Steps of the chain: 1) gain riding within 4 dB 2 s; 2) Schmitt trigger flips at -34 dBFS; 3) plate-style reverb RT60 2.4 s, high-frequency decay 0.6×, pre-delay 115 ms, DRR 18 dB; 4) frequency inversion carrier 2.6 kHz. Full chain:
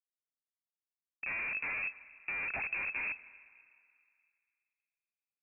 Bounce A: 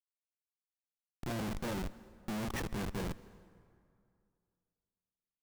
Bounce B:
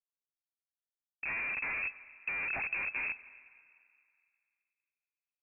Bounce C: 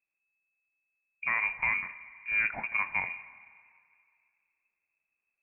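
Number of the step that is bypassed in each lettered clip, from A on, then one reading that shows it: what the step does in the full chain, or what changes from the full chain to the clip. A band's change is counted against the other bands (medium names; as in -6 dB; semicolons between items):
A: 4, 2 kHz band -28.5 dB; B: 1, loudness change +1.0 LU; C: 2, crest factor change +3.5 dB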